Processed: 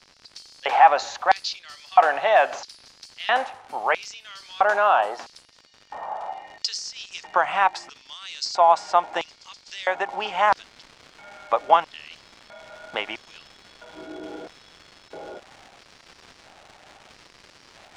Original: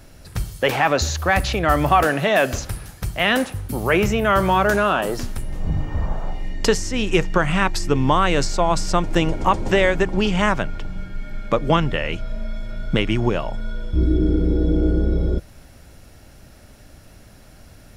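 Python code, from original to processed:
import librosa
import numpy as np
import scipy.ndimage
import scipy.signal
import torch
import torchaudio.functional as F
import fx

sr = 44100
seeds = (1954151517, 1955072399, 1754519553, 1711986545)

y = fx.filter_lfo_highpass(x, sr, shape='square', hz=0.76, low_hz=790.0, high_hz=4700.0, q=4.1)
y = fx.dmg_crackle(y, sr, seeds[0], per_s=fx.steps((0.0, 110.0), (10.09, 490.0)), level_db=-28.0)
y = fx.air_absorb(y, sr, metres=110.0)
y = y * 10.0 ** (-3.5 / 20.0)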